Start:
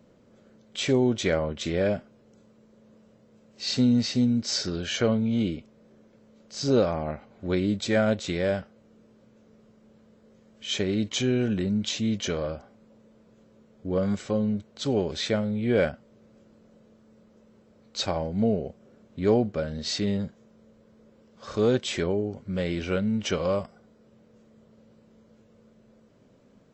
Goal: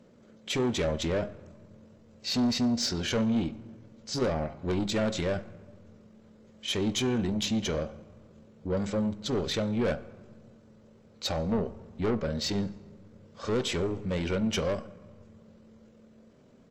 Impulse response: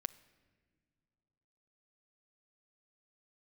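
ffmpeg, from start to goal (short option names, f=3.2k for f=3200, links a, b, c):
-filter_complex "[0:a]asoftclip=type=tanh:threshold=-24.5dB,bandreject=f=68.67:t=h:w=4,bandreject=f=137.34:t=h:w=4,bandreject=f=206.01:t=h:w=4,bandreject=f=274.68:t=h:w=4,bandreject=f=343.35:t=h:w=4,bandreject=f=412.02:t=h:w=4,bandreject=f=480.69:t=h:w=4,bandreject=f=549.36:t=h:w=4,bandreject=f=618.03:t=h:w=4,bandreject=f=686.7:t=h:w=4,bandreject=f=755.37:t=h:w=4,bandreject=f=824.04:t=h:w=4,bandreject=f=892.71:t=h:w=4,bandreject=f=961.38:t=h:w=4,bandreject=f=1.03005k:t=h:w=4,bandreject=f=1.09872k:t=h:w=4,bandreject=f=1.16739k:t=h:w=4,bandreject=f=1.23606k:t=h:w=4,bandreject=f=1.30473k:t=h:w=4,bandreject=f=1.3734k:t=h:w=4,bandreject=f=1.44207k:t=h:w=4,bandreject=f=1.51074k:t=h:w=4,bandreject=f=1.57941k:t=h:w=4,bandreject=f=1.64808k:t=h:w=4[a];[1:a]atrim=start_sample=2205,asetrate=22491,aresample=44100[b];[a][b]afir=irnorm=-1:irlink=0,atempo=1.6"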